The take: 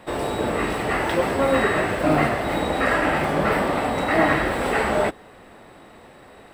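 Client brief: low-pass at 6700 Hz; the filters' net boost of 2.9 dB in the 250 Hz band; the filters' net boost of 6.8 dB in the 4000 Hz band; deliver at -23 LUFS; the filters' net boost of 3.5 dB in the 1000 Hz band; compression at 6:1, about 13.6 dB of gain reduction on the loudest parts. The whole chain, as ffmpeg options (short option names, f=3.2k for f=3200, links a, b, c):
-af "lowpass=6.7k,equalizer=f=250:t=o:g=3.5,equalizer=f=1k:t=o:g=4,equalizer=f=4k:t=o:g=8.5,acompressor=threshold=-27dB:ratio=6,volume=6.5dB"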